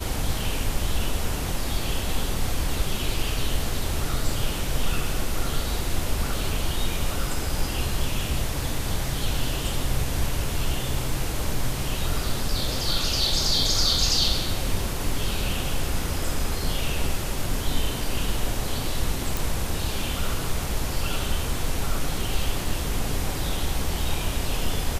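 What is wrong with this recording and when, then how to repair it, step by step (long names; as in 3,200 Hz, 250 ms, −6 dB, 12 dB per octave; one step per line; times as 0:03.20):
0:19.37: click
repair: click removal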